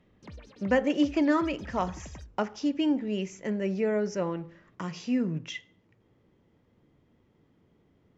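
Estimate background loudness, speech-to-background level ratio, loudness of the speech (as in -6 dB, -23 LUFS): -47.5 LUFS, 18.0 dB, -29.5 LUFS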